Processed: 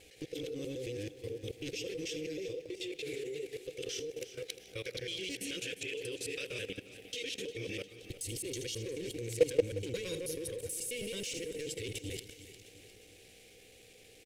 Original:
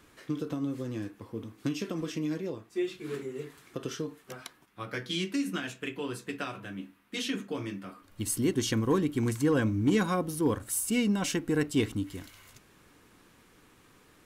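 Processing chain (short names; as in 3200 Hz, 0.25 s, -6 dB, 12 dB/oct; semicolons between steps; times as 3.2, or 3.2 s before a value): local time reversal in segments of 0.108 s; in parallel at +2 dB: compressor 16:1, threshold -38 dBFS, peak gain reduction 18.5 dB; on the sum: overloaded stage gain 23.5 dB; EQ curve 110 Hz 0 dB, 230 Hz -14 dB, 500 Hz +12 dB, 730 Hz -24 dB, 1300 Hz -17 dB, 2300 Hz +9 dB, 8900 Hz +8 dB, 14000 Hz +3 dB; buzz 60 Hz, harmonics 13, -59 dBFS -1 dB/oct; on a send: feedback echo 78 ms, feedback 50%, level -17 dB; on the sum: level quantiser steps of 19 dB; lo-fi delay 0.354 s, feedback 55%, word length 11-bit, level -14 dB; gain -1.5 dB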